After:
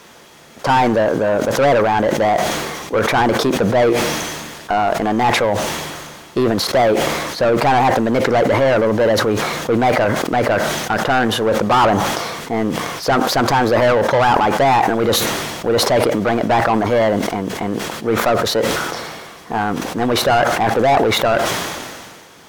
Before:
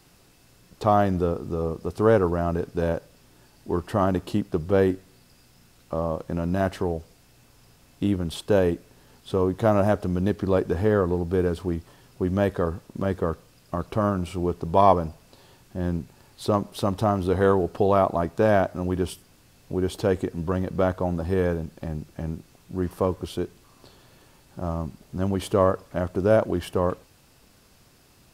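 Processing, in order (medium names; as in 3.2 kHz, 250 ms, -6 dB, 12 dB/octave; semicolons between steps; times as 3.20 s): tape speed +26%; overdrive pedal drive 28 dB, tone 2.6 kHz, clips at -3.5 dBFS; decay stretcher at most 31 dB/s; trim -2 dB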